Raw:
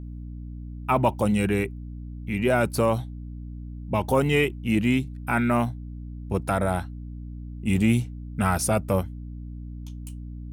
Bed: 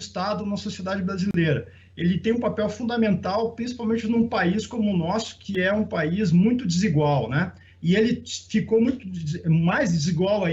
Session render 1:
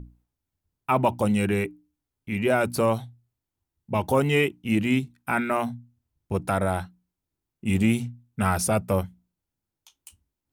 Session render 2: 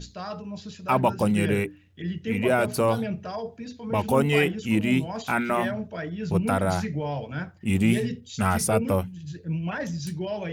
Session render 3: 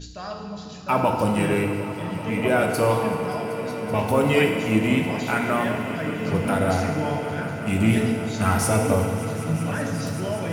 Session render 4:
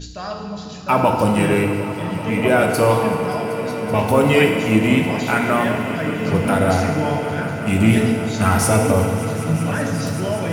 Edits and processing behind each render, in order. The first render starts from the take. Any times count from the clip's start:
hum notches 60/120/180/240/300 Hz
add bed -9 dB
echo with a slow build-up 191 ms, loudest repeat 5, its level -17.5 dB; FDN reverb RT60 2.1 s, low-frequency decay 0.85×, high-frequency decay 0.8×, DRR 1.5 dB
trim +5 dB; peak limiter -3 dBFS, peak gain reduction 3 dB

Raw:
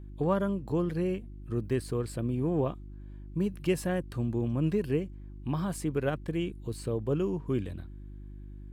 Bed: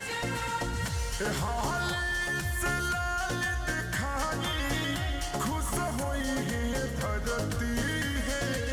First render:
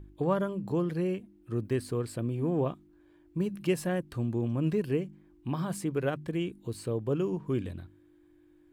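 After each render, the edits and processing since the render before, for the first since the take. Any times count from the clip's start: de-hum 50 Hz, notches 5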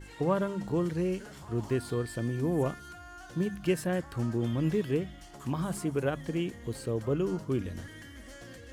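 add bed -17 dB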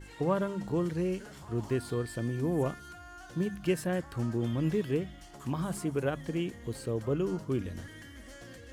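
trim -1 dB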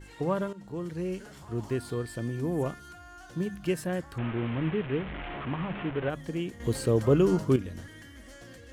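0.53–1.21 s: fade in, from -12.5 dB; 4.18–6.10 s: one-bit delta coder 16 kbps, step -31 dBFS; 6.60–7.56 s: gain +8.5 dB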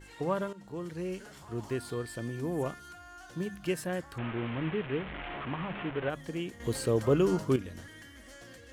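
bass shelf 380 Hz -5.5 dB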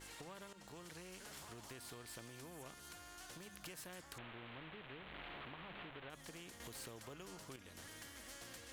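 compression 4:1, threshold -41 dBFS, peak gain reduction 17.5 dB; spectrum-flattening compressor 2:1

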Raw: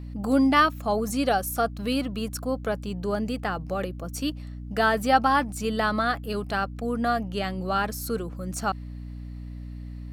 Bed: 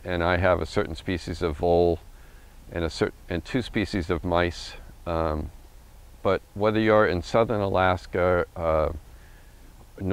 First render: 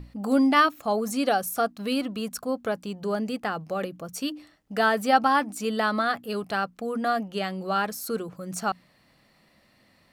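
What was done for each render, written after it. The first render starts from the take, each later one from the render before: hum notches 60/120/180/240/300 Hz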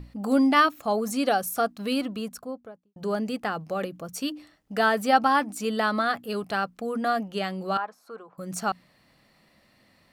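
2.00–2.96 s: studio fade out; 7.77–8.38 s: band-pass filter 950 Hz, Q 2.1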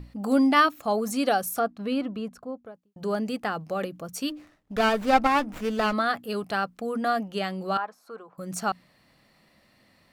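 1.59–2.66 s: low-pass 1.7 kHz 6 dB/octave; 4.30–5.93 s: sliding maximum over 9 samples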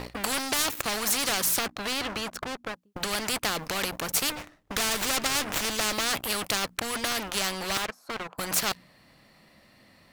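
waveshaping leveller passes 3; spectrum-flattening compressor 4:1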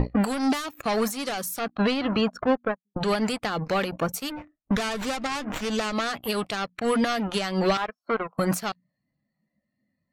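compression 6:1, threshold -31 dBFS, peak gain reduction 10 dB; spectral contrast expander 2.5:1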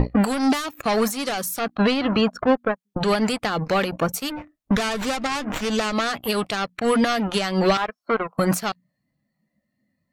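trim +4 dB

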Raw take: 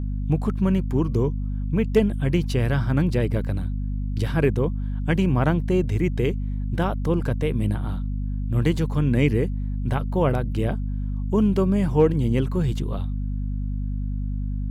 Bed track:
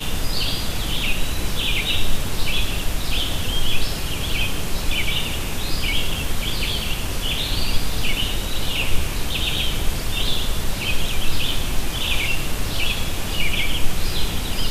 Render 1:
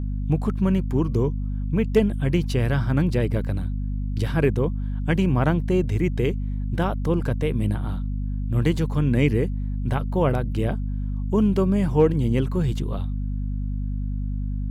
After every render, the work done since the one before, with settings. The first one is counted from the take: no audible change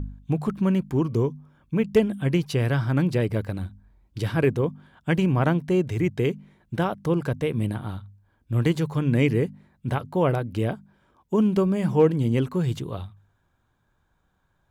de-hum 50 Hz, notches 5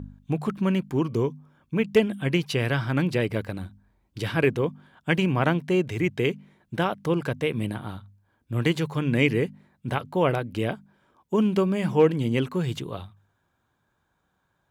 high-pass 150 Hz 6 dB/octave; dynamic bell 2.6 kHz, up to +6 dB, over -45 dBFS, Q 1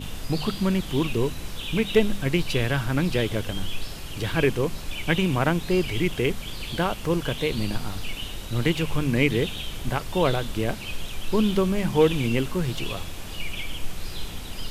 add bed track -11 dB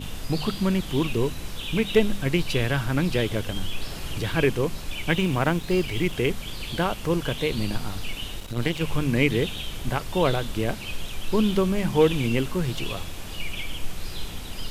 3.56–4.21 s: three bands compressed up and down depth 70%; 5.09–6.14 s: companding laws mixed up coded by A; 8.40–8.81 s: partial rectifier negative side -12 dB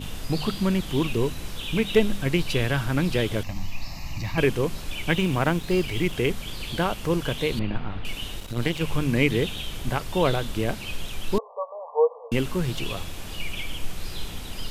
3.43–4.38 s: static phaser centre 2.2 kHz, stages 8; 7.59–8.05 s: low-pass 2.8 kHz 24 dB/octave; 11.38–12.32 s: brick-wall FIR band-pass 440–1200 Hz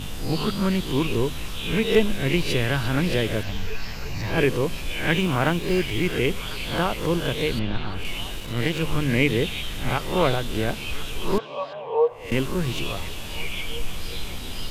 reverse spectral sustain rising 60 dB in 0.43 s; repeats whose band climbs or falls 349 ms, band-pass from 3.6 kHz, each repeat -0.7 oct, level -8 dB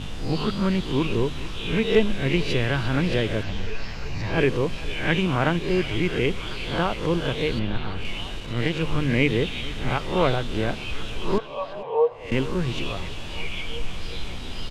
distance through air 75 m; delay 447 ms -18.5 dB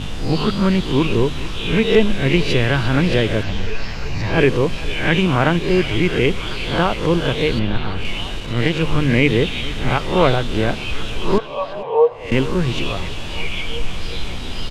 trim +6.5 dB; peak limiter -1 dBFS, peak gain reduction 2.5 dB

